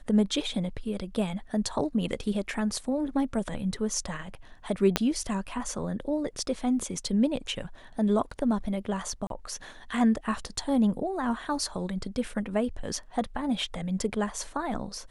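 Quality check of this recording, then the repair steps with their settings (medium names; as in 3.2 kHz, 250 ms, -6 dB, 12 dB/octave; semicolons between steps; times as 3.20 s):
4.96 s: pop -7 dBFS
9.27–9.30 s: dropout 32 ms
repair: de-click; interpolate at 9.27 s, 32 ms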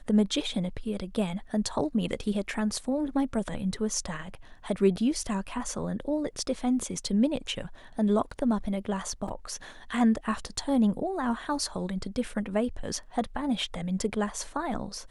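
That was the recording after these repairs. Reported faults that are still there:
4.96 s: pop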